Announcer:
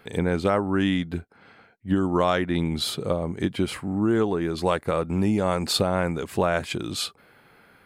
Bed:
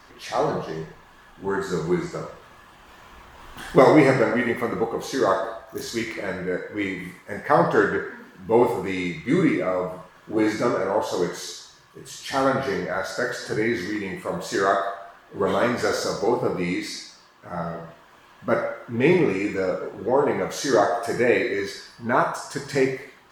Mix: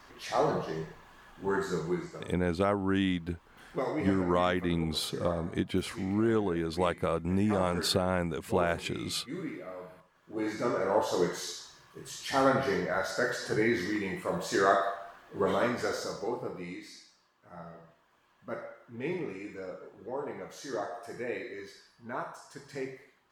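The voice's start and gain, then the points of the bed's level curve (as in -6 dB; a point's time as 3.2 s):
2.15 s, -5.5 dB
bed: 1.61 s -4.5 dB
2.57 s -18.5 dB
10.03 s -18.5 dB
10.93 s -4 dB
15.25 s -4 dB
16.82 s -16.5 dB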